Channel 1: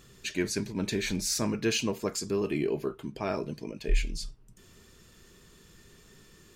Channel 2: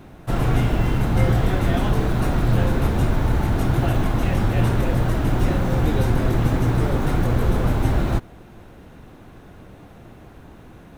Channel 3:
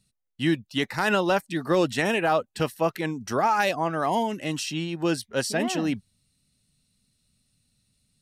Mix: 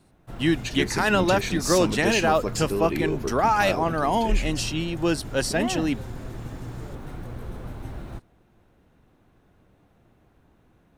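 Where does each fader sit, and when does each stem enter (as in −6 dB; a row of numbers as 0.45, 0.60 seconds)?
+2.0, −16.5, +1.5 decibels; 0.40, 0.00, 0.00 seconds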